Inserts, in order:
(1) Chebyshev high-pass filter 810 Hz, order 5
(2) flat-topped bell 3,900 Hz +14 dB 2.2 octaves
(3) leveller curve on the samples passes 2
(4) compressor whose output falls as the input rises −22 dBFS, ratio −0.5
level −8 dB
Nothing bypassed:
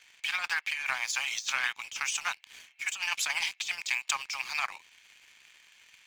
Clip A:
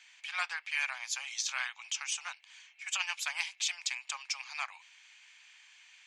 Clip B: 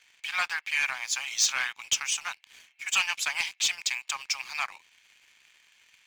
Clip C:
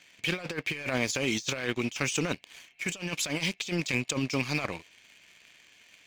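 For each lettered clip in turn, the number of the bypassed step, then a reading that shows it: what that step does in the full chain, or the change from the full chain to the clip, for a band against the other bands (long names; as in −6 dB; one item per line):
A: 3, 8 kHz band +4.0 dB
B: 4, change in crest factor −2.0 dB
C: 1, 500 Hz band +22.0 dB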